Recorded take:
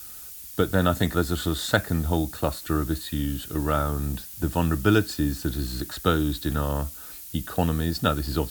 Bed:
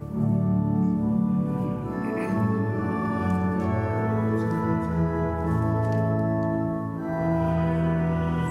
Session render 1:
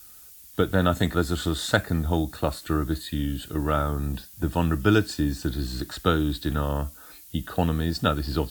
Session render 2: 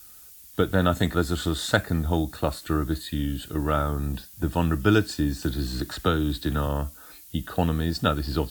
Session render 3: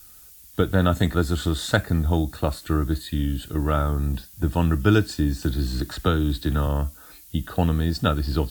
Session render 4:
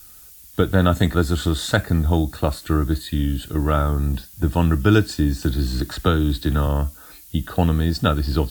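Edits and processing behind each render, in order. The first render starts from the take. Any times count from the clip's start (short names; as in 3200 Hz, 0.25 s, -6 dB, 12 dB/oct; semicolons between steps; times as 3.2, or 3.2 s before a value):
noise print and reduce 7 dB
5.42–6.67 three-band squash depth 40%
low shelf 140 Hz +6.5 dB
gain +3 dB; limiter -2 dBFS, peak gain reduction 2 dB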